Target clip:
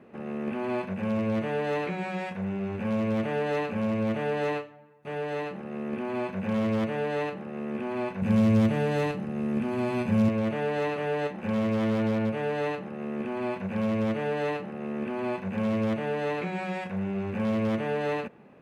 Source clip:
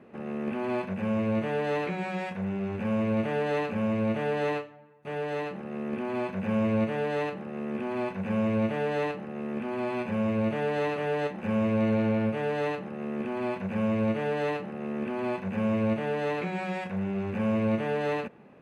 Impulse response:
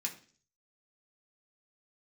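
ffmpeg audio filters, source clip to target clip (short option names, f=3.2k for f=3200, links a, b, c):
-filter_complex "[0:a]aeval=exprs='0.0944*(abs(mod(val(0)/0.0944+3,4)-2)-1)':c=same,asettb=1/sr,asplit=3[a][b][c];[a]atrim=end=8.224[d];[b]atrim=start=8.22:end=10.29,asetpts=PTS-STARTPTS,afade=t=in:d=0.004:c=qsin,afade=t=out:st=2.066:d=0.004:c=qsin,bass=f=250:g=10,treble=f=4k:g=8[e];[c]atrim=start=10.286[f];[d][e]acrossfade=d=0.004:c1=hsin:c2=qsin[g];[g][f]acrossfade=d=0.004:c1=qsin:c2=hsin"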